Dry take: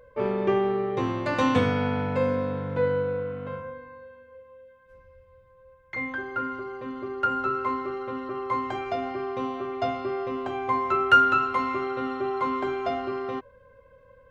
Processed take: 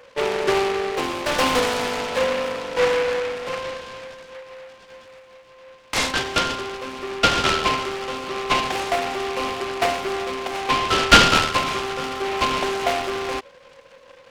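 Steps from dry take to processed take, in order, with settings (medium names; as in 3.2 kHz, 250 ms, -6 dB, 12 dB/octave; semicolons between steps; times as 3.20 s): Bessel high-pass 470 Hz, order 4; in parallel at -2 dB: gain riding 2 s; on the sum: delay time shaken by noise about 1.5 kHz, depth 0.12 ms; trim +1 dB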